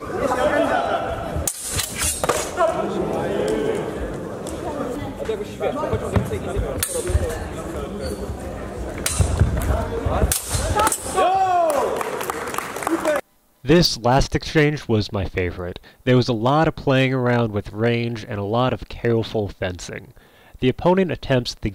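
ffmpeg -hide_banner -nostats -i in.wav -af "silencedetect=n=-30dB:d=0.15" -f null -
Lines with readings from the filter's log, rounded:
silence_start: 13.20
silence_end: 13.65 | silence_duration: 0.45
silence_start: 15.77
silence_end: 16.06 | silence_duration: 0.30
silence_start: 20.05
silence_end: 20.62 | silence_duration: 0.57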